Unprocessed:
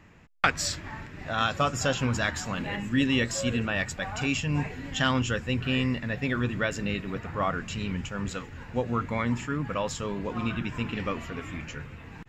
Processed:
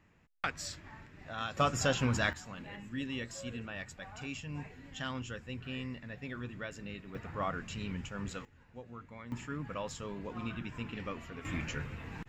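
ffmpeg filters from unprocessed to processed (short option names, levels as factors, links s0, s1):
-af "asetnsamples=n=441:p=0,asendcmd='1.57 volume volume -3.5dB;2.33 volume volume -14dB;7.15 volume volume -7.5dB;8.45 volume volume -20dB;9.32 volume volume -9.5dB;11.45 volume volume 0dB',volume=0.251"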